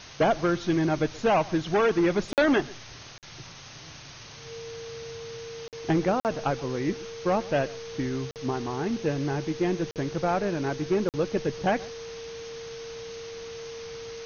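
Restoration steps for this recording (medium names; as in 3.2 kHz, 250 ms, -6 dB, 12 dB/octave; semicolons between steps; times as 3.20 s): band-stop 460 Hz, Q 30; interpolate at 2.33/3.18/5.68/6.20/8.31/9.91/11.09 s, 48 ms; noise print and reduce 27 dB; inverse comb 129 ms -21.5 dB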